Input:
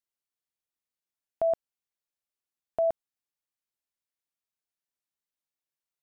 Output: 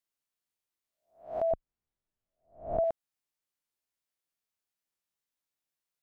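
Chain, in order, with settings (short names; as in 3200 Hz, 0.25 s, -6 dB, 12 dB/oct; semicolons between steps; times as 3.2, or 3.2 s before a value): spectral swells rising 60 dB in 0.39 s; 1.51–2.84 tilt -4 dB/oct; compressor 1.5:1, threshold -33 dBFS, peak gain reduction 4.5 dB; record warp 45 rpm, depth 100 cents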